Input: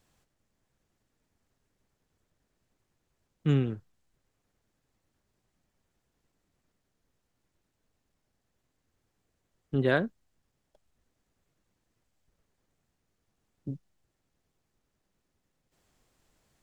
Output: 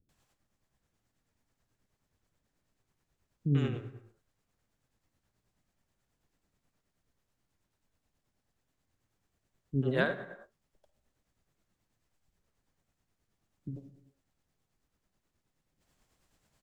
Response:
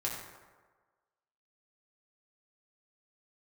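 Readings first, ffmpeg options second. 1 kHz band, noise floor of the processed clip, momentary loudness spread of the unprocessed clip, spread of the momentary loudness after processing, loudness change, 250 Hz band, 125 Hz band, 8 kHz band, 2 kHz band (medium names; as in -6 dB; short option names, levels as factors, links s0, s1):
-3.0 dB, -83 dBFS, 17 LU, 18 LU, -3.5 dB, -3.0 dB, -2.0 dB, no reading, -1.5 dB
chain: -filter_complex "[0:a]acrossover=split=390[s0][s1];[s1]adelay=90[s2];[s0][s2]amix=inputs=2:normalize=0,asplit=2[s3][s4];[1:a]atrim=start_sample=2205,afade=t=out:st=0.38:d=0.01,atrim=end_sample=17199,adelay=52[s5];[s4][s5]afir=irnorm=-1:irlink=0,volume=0.211[s6];[s3][s6]amix=inputs=2:normalize=0,tremolo=f=9.3:d=0.46"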